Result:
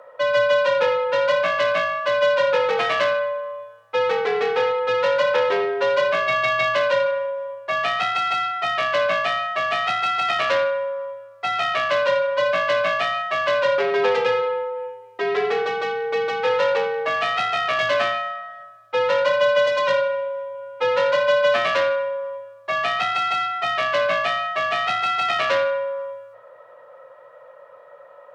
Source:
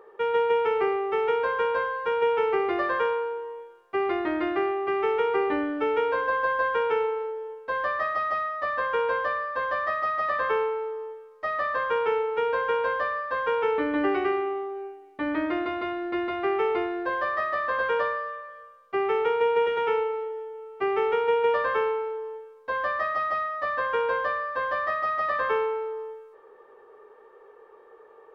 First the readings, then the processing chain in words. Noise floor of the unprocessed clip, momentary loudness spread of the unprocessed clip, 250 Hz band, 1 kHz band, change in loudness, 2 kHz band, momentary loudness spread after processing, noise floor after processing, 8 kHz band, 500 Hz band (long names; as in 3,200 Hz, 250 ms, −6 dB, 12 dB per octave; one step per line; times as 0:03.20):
−53 dBFS, 10 LU, −9.5 dB, +4.0 dB, +5.5 dB, +7.0 dB, 9 LU, −47 dBFS, can't be measured, +5.5 dB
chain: phase distortion by the signal itself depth 0.25 ms
frequency shifter +110 Hz
level +6 dB